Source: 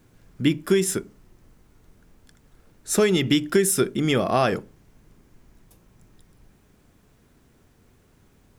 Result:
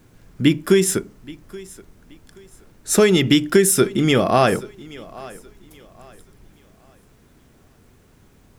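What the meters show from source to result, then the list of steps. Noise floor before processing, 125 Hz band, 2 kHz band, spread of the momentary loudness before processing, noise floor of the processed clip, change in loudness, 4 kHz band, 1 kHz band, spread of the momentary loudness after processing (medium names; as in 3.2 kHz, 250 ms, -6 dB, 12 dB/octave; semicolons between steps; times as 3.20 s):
-59 dBFS, +5.0 dB, +5.0 dB, 6 LU, -54 dBFS, +5.0 dB, +5.0 dB, +5.0 dB, 12 LU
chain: thinning echo 826 ms, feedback 32%, high-pass 170 Hz, level -20 dB; trim +5 dB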